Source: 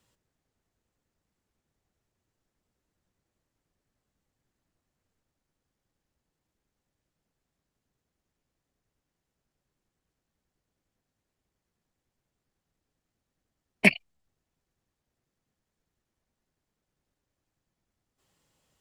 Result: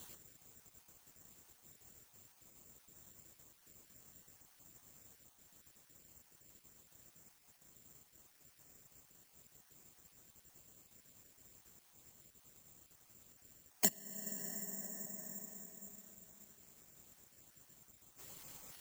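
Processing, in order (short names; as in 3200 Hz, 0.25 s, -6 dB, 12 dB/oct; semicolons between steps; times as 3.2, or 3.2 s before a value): random spectral dropouts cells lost 30%; HPF 52 Hz; plate-style reverb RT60 3.7 s, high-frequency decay 0.5×, DRR 18.5 dB; careless resampling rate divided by 6×, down none, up zero stuff; compressor 3:1, threshold -54 dBFS, peak gain reduction 33 dB; gain +13.5 dB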